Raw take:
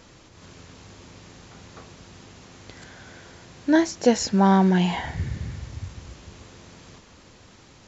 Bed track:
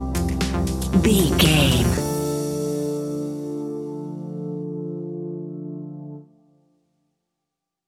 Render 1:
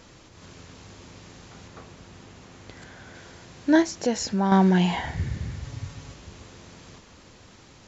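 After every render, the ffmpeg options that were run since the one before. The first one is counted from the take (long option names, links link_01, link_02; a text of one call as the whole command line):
ffmpeg -i in.wav -filter_complex "[0:a]asettb=1/sr,asplit=3[link_01][link_02][link_03];[link_01]atrim=end=1.684[link_04];[link_02]atrim=start=1.68:end=3.15,asetpts=PTS-STARTPTS,afade=type=in:duration=0.004:curve=qsin,afade=type=out:start_time=1.466:duration=0.004:curve=qsin,equalizer=frequency=5400:width_type=o:width=1.8:gain=-3.5[link_05];[link_03]atrim=start=3.146[link_06];[link_04][link_05]acrossfade=duration=0.004:curve1=hsin:curve2=qsin[link_07];[link_07][link_06]acrossfade=duration=0.004:curve1=qsin:curve2=hsin,asettb=1/sr,asplit=3[link_08][link_09][link_10];[link_08]atrim=end=3.824[link_11];[link_09]atrim=start=3.82:end=4.52,asetpts=PTS-STARTPTS,afade=type=in:duration=0.004:curve=qsin,afade=type=out:start_time=0.696:duration=0.004:curve=qsin,acompressor=threshold=-30dB:ratio=1.5:attack=3.2:release=140:knee=1:detection=peak[link_12];[link_10]atrim=start=4.516[link_13];[link_11][link_12]acrossfade=duration=0.004:curve1=hsin:curve2=qsin[link_14];[link_14][link_13]acrossfade=duration=0.004:curve1=qsin:curve2=hsin,asettb=1/sr,asplit=3[link_15][link_16][link_17];[link_15]atrim=end=5.644[link_18];[link_16]atrim=start=5.64:end=6.14,asetpts=PTS-STARTPTS,afade=type=in:duration=0.004:curve=qsin,afade=type=out:start_time=0.496:duration=0.004:curve=qsin,aecho=1:1:7.1:0.65,atrim=end_sample=22050[link_19];[link_17]atrim=start=6.136[link_20];[link_18][link_19]acrossfade=duration=0.004:curve1=hsin:curve2=qsin[link_21];[link_21][link_20]acrossfade=duration=0.004:curve1=qsin:curve2=hsin" out.wav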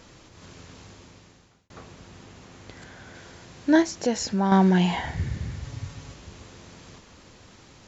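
ffmpeg -i in.wav -filter_complex "[0:a]asplit=2[link_01][link_02];[link_01]atrim=end=1.7,asetpts=PTS-STARTPTS,afade=type=out:start_time=0.8:duration=0.9[link_03];[link_02]atrim=start=1.7,asetpts=PTS-STARTPTS,afade=type=in:duration=0.004:curve=hsin[link_04];[link_03][link_04]concat=n=2:v=0:a=1" out.wav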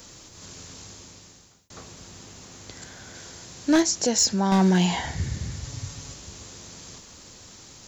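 ffmpeg -i in.wav -filter_complex "[0:a]acrossover=split=140|3200[link_01][link_02][link_03];[link_03]crystalizer=i=4:c=0[link_04];[link_01][link_02][link_04]amix=inputs=3:normalize=0,asoftclip=type=hard:threshold=-13dB" out.wav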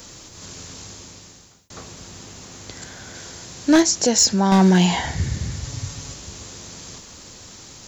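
ffmpeg -i in.wav -af "volume=5dB" out.wav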